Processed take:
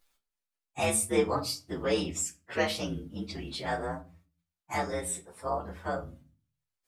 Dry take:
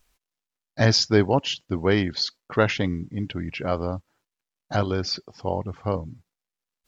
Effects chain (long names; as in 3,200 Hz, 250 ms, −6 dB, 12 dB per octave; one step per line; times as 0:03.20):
partials spread apart or drawn together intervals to 119%
low-shelf EQ 290 Hz −11 dB
mains-hum notches 60/120/180 Hz
in parallel at +0.5 dB: downward compressor, threshold −36 dBFS, peak gain reduction 16.5 dB
on the sum: convolution reverb RT60 0.35 s, pre-delay 6 ms, DRR 6 dB
level −5 dB